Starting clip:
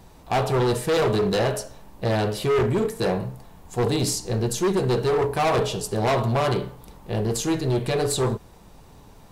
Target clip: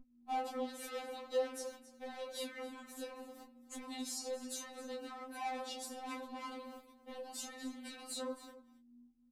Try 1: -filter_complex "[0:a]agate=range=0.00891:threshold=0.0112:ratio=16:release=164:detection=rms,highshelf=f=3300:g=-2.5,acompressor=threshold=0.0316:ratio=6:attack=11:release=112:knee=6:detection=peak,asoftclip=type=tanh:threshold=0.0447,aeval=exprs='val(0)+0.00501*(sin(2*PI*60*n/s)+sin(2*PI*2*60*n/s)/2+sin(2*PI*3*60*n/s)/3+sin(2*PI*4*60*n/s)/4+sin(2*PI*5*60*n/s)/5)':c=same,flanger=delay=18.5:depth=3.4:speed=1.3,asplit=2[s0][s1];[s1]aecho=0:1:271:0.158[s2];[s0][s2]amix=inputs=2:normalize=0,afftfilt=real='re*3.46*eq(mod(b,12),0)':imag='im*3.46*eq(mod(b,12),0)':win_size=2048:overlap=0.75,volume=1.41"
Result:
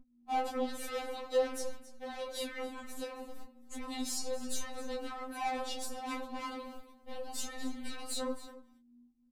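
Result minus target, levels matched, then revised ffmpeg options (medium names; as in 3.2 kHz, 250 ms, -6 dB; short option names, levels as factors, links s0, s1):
125 Hz band +11.0 dB; compression: peak gain reduction -6.5 dB
-filter_complex "[0:a]agate=range=0.00891:threshold=0.0112:ratio=16:release=164:detection=rms,highpass=f=110:p=1,highshelf=f=3300:g=-2.5,acompressor=threshold=0.0133:ratio=6:attack=11:release=112:knee=6:detection=peak,asoftclip=type=tanh:threshold=0.0447,aeval=exprs='val(0)+0.00501*(sin(2*PI*60*n/s)+sin(2*PI*2*60*n/s)/2+sin(2*PI*3*60*n/s)/3+sin(2*PI*4*60*n/s)/4+sin(2*PI*5*60*n/s)/5)':c=same,flanger=delay=18.5:depth=3.4:speed=1.3,asplit=2[s0][s1];[s1]aecho=0:1:271:0.158[s2];[s0][s2]amix=inputs=2:normalize=0,afftfilt=real='re*3.46*eq(mod(b,12),0)':imag='im*3.46*eq(mod(b,12),0)':win_size=2048:overlap=0.75,volume=1.41"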